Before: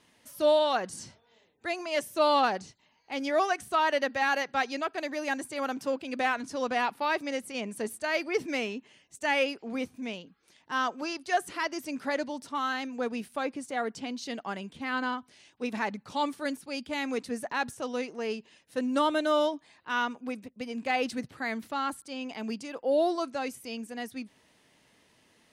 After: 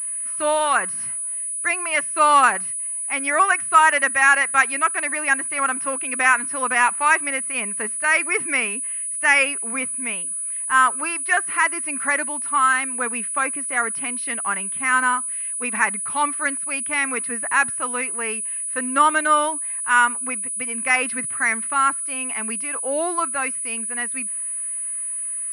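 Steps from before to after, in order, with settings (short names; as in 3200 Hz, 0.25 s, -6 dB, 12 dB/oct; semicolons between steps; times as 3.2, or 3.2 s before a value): band shelf 1600 Hz +14.5 dB; pulse-width modulation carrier 9900 Hz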